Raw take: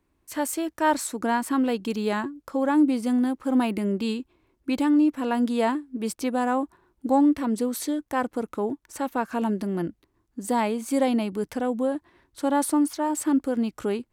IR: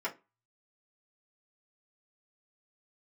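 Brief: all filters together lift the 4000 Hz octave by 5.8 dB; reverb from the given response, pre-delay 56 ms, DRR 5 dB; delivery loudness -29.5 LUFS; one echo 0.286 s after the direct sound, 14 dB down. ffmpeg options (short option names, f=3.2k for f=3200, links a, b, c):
-filter_complex "[0:a]equalizer=f=4k:t=o:g=7.5,aecho=1:1:286:0.2,asplit=2[a][b];[1:a]atrim=start_sample=2205,adelay=56[c];[b][c]afir=irnorm=-1:irlink=0,volume=-10dB[d];[a][d]amix=inputs=2:normalize=0,volume=-5.5dB"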